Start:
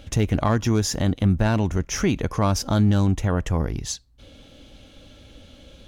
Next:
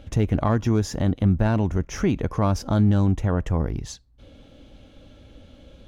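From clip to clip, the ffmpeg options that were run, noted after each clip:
-af "highshelf=f=2200:g=-10"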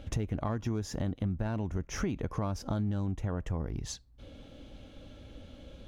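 -af "acompressor=threshold=0.0355:ratio=4,volume=0.841"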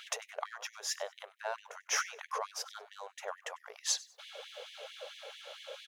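-filter_complex "[0:a]acompressor=threshold=0.0141:ratio=4,asplit=3[s0][s1][s2];[s1]adelay=97,afreqshift=62,volume=0.0891[s3];[s2]adelay=194,afreqshift=124,volume=0.0266[s4];[s0][s3][s4]amix=inputs=3:normalize=0,afftfilt=real='re*gte(b*sr/1024,390*pow(1800/390,0.5+0.5*sin(2*PI*4.5*pts/sr)))':imag='im*gte(b*sr/1024,390*pow(1800/390,0.5+0.5*sin(2*PI*4.5*pts/sr)))':win_size=1024:overlap=0.75,volume=3.98"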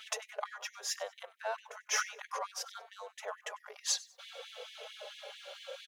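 -filter_complex "[0:a]asplit=2[s0][s1];[s1]adelay=4.1,afreqshift=-0.64[s2];[s0][s2]amix=inputs=2:normalize=1,volume=1.41"

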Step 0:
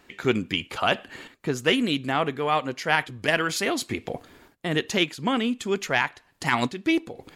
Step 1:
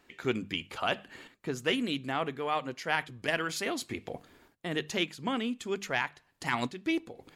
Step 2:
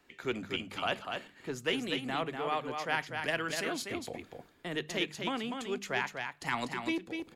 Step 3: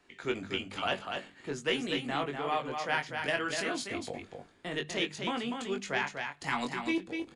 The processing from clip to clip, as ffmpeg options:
-af "bandreject=f=50:t=h:w=6,bandreject=f=100:t=h:w=6,bandreject=f=150:t=h:w=6,bandreject=f=200:t=h:w=6,volume=0.422"
-filter_complex "[0:a]acrossover=split=290|570|1800[s0][s1][s2][s3];[s0]asoftclip=type=hard:threshold=0.0106[s4];[s4][s1][s2][s3]amix=inputs=4:normalize=0,aecho=1:1:245:0.531,volume=0.75"
-filter_complex "[0:a]asplit=2[s0][s1];[s1]adelay=21,volume=0.562[s2];[s0][s2]amix=inputs=2:normalize=0,aresample=22050,aresample=44100"

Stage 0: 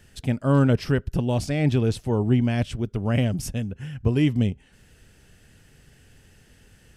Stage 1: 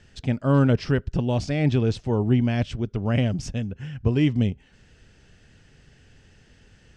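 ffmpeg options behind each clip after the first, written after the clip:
-af "lowpass=f=6700:w=0.5412,lowpass=f=6700:w=1.3066"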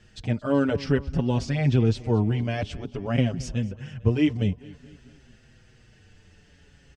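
-filter_complex "[0:a]aecho=1:1:224|448|672|896:0.0944|0.0519|0.0286|0.0157,asplit=2[s0][s1];[s1]adelay=6,afreqshift=-0.52[s2];[s0][s2]amix=inputs=2:normalize=1,volume=1.26"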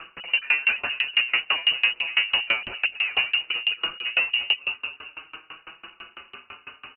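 -filter_complex "[0:a]asplit=2[s0][s1];[s1]highpass=f=720:p=1,volume=70.8,asoftclip=type=tanh:threshold=0.398[s2];[s0][s2]amix=inputs=2:normalize=0,lowpass=f=1100:p=1,volume=0.501,lowpass=f=2600:t=q:w=0.5098,lowpass=f=2600:t=q:w=0.6013,lowpass=f=2600:t=q:w=0.9,lowpass=f=2600:t=q:w=2.563,afreqshift=-3000,aeval=exprs='val(0)*pow(10,-27*if(lt(mod(6*n/s,1),2*abs(6)/1000),1-mod(6*n/s,1)/(2*abs(6)/1000),(mod(6*n/s,1)-2*abs(6)/1000)/(1-2*abs(6)/1000))/20)':c=same"

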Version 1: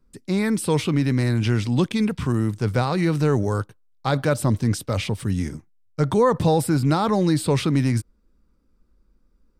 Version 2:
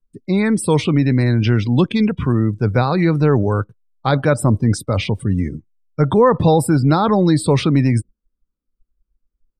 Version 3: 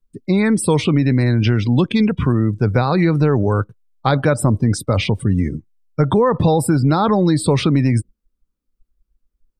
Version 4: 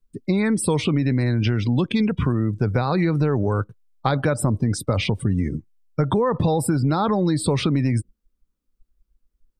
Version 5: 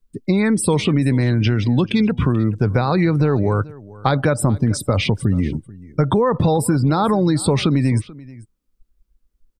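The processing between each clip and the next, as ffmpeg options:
-af "afftdn=nr=25:nf=-36,volume=1.88"
-af "acompressor=threshold=0.2:ratio=6,volume=1.41"
-af "acompressor=threshold=0.112:ratio=2.5"
-af "aecho=1:1:436:0.0891,volume=1.5"

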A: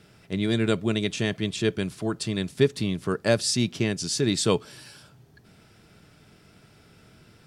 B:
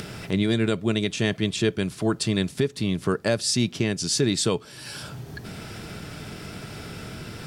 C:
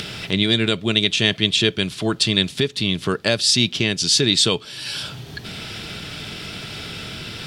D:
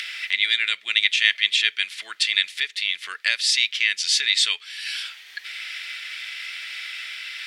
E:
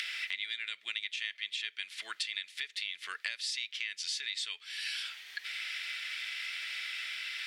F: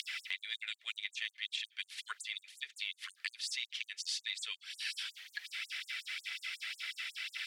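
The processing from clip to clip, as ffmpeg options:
-af "acompressor=mode=upward:threshold=0.0355:ratio=2.5,alimiter=limit=0.168:level=0:latency=1:release=404,volume=1.68"
-af "equalizer=f=3400:t=o:w=1.3:g=13,volume=1.19"
-af "highpass=f=2000:t=q:w=4.5,volume=0.562"
-af "acompressor=threshold=0.0355:ratio=8,volume=0.596"
-af "aphaser=in_gain=1:out_gain=1:delay=2.4:decay=0.35:speed=1.9:type=triangular,afftfilt=real='re*gte(b*sr/1024,340*pow(6900/340,0.5+0.5*sin(2*PI*5.5*pts/sr)))':imag='im*gte(b*sr/1024,340*pow(6900/340,0.5+0.5*sin(2*PI*5.5*pts/sr)))':win_size=1024:overlap=0.75,volume=0.794"

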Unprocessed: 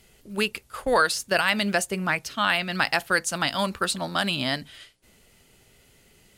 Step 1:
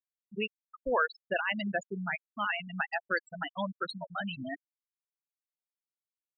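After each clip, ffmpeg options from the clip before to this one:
-af "afftfilt=real='re*gte(hypot(re,im),0.2)':imag='im*gte(hypot(re,im),0.2)':win_size=1024:overlap=0.75,volume=0.447"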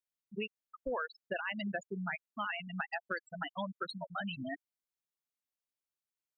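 -af "acompressor=threshold=0.0251:ratio=6,volume=0.841"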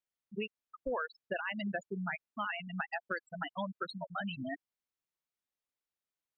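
-af "highshelf=f=5600:g=-9.5,volume=1.12"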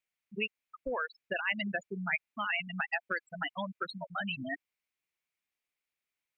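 -af "equalizer=f=2300:t=o:w=0.7:g=12"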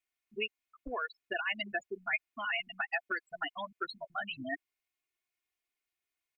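-af "aecho=1:1:2.8:0.93,volume=0.668"

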